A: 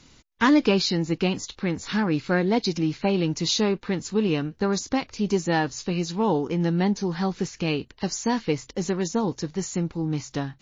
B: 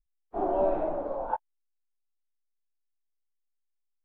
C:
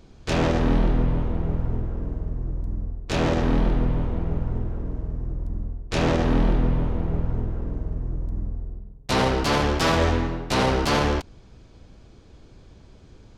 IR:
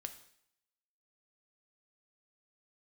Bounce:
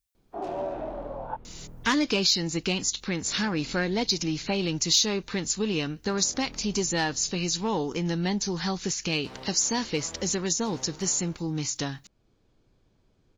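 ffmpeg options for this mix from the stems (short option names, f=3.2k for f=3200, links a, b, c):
-filter_complex "[0:a]acontrast=73,crystalizer=i=5:c=0,adelay=1450,volume=-2dB,asplit=2[a][b];[b]volume=-21dB[c];[1:a]highpass=57,highshelf=f=2.4k:g=11,volume=1.5dB[d];[2:a]equalizer=f=61:w=3.1:g=-13.5,adelay=150,volume=-16dB[e];[3:a]atrim=start_sample=2205[f];[c][f]afir=irnorm=-1:irlink=0[g];[a][d][e][g]amix=inputs=4:normalize=0,acompressor=threshold=-43dB:ratio=1.5"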